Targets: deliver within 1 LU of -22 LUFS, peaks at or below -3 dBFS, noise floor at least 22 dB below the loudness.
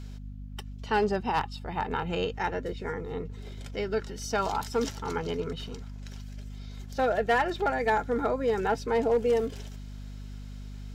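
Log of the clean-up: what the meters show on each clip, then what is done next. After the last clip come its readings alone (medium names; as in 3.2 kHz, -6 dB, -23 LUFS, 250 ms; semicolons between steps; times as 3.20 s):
clipped samples 0.3%; clipping level -18.0 dBFS; hum 50 Hz; highest harmonic 250 Hz; hum level -38 dBFS; loudness -29.5 LUFS; peak level -18.0 dBFS; loudness target -22.0 LUFS
-> clip repair -18 dBFS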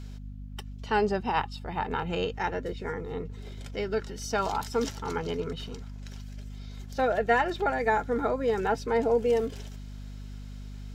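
clipped samples 0.0%; hum 50 Hz; highest harmonic 250 Hz; hum level -38 dBFS
-> de-hum 50 Hz, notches 5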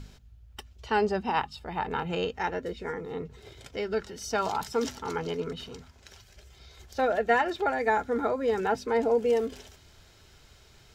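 hum not found; loudness -29.0 LUFS; peak level -11.5 dBFS; loudness target -22.0 LUFS
-> trim +7 dB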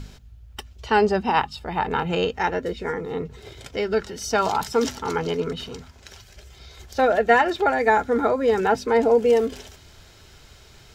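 loudness -22.0 LUFS; peak level -4.5 dBFS; noise floor -50 dBFS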